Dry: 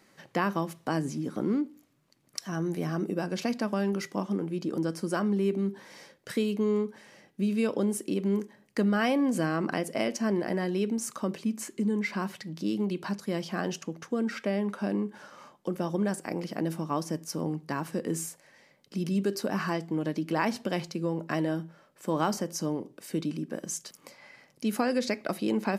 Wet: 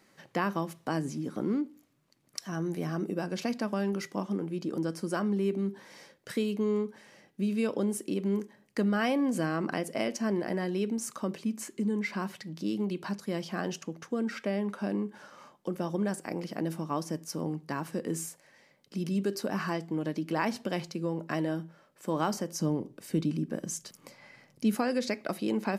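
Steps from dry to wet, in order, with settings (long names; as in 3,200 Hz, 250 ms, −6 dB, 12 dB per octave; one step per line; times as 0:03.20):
0:22.60–0:24.75: low-shelf EQ 180 Hz +12 dB
level −2 dB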